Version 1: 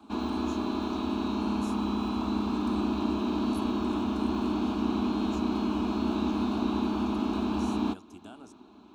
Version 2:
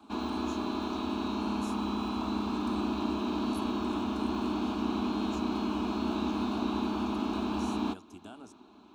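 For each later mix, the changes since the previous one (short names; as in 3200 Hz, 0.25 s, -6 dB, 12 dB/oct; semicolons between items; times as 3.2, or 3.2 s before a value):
background: add low shelf 410 Hz -4.5 dB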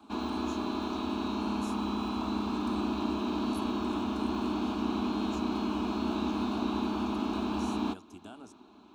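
none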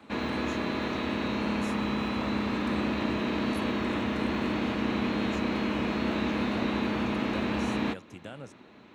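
master: remove fixed phaser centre 520 Hz, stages 6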